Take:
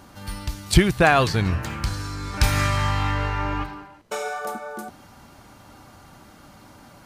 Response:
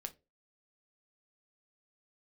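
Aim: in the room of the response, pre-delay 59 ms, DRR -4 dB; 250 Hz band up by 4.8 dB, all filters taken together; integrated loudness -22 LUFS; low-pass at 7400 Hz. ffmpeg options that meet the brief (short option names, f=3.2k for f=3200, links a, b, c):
-filter_complex "[0:a]lowpass=7.4k,equalizer=f=250:t=o:g=7.5,asplit=2[a][b];[1:a]atrim=start_sample=2205,adelay=59[c];[b][c]afir=irnorm=-1:irlink=0,volume=7dB[d];[a][d]amix=inputs=2:normalize=0,volume=-6dB"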